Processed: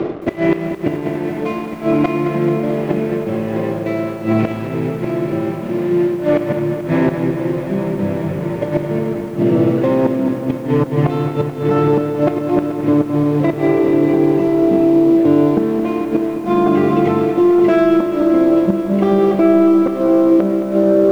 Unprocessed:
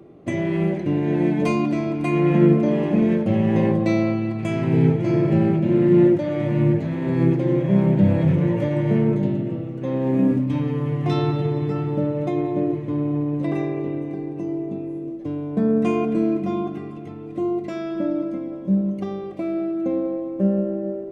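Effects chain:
running median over 9 samples
gate with flip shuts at −14 dBFS, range −28 dB
reversed playback
downward compressor 6 to 1, threshold −36 dBFS, peak gain reduction 15.5 dB
reversed playback
bass and treble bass −9 dB, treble −5 dB
on a send at −15 dB: convolution reverb, pre-delay 3 ms
on the sum: leveller curve on the samples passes 2
high-frequency loss of the air 110 metres
boost into a limiter +28.5 dB
feedback echo at a low word length 217 ms, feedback 80%, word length 6 bits, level −10 dB
level −6 dB

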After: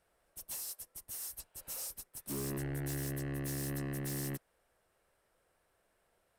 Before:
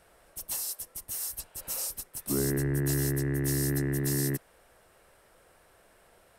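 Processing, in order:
soft clipping −31.5 dBFS, distortion −9 dB
expander for the loud parts 1.5 to 1, over −56 dBFS
level −3.5 dB

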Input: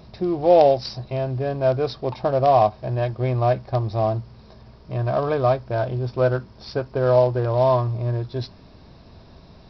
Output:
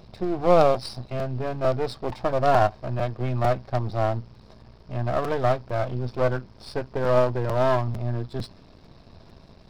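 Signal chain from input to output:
gain on one half-wave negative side −12 dB
regular buffer underruns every 0.45 s, samples 256, repeat, from 0:00.74

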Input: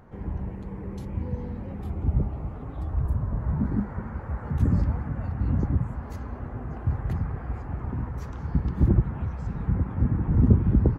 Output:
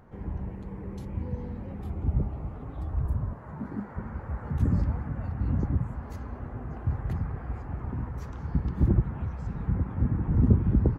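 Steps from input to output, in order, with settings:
0:03.32–0:03.95: high-pass filter 610 Hz → 250 Hz 6 dB per octave
level −2.5 dB

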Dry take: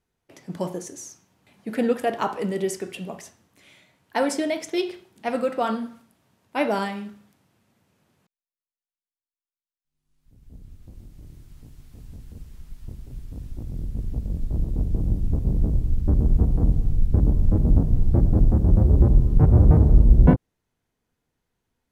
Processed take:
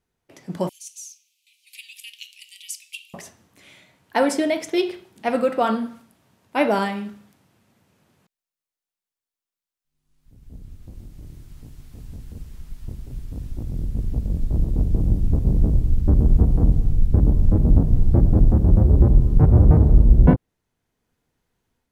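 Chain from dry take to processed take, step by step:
0:00.69–0:03.14: Butterworth high-pass 2,400 Hz 72 dB per octave
dynamic equaliser 6,500 Hz, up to −3 dB, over −51 dBFS, Q 1
automatic gain control gain up to 4 dB

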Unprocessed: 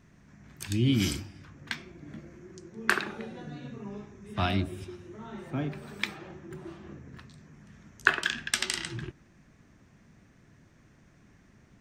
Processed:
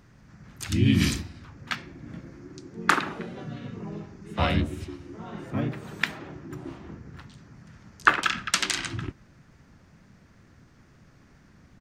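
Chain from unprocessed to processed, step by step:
pitch-shifted copies added −4 semitones 0 dB
tape wow and flutter 23 cents
level +1 dB

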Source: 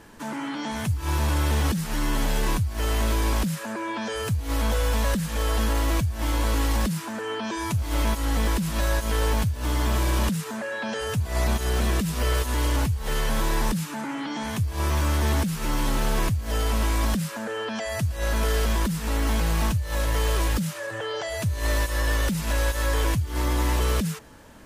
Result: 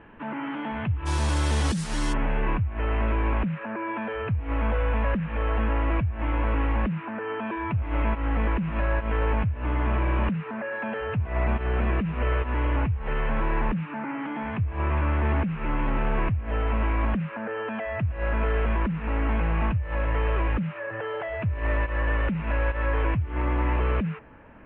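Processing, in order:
elliptic low-pass filter 2,800 Hz, stop band 50 dB, from 0:01.05 9,700 Hz, from 0:02.12 2,600 Hz

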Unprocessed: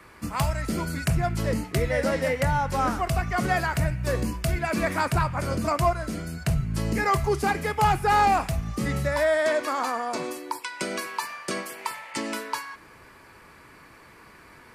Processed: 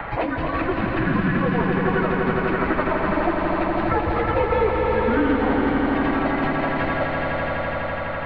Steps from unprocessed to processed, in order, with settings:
single-sideband voice off tune −340 Hz 290–3,400 Hz
hum removal 50.69 Hz, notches 2
in parallel at −3 dB: downward compressor 6 to 1, threshold −36 dBFS, peak gain reduction 17.5 dB
on the sum: time stretch by phase vocoder 0.56×
on a send: echo that builds up and dies away 83 ms, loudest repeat 5, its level −7 dB
on the sum: multiband upward and downward compressor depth 70%
level +4 dB

